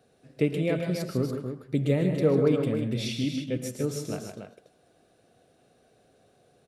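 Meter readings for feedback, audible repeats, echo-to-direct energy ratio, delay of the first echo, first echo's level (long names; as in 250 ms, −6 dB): repeats not evenly spaced, 3, −4.0 dB, 112 ms, −14.5 dB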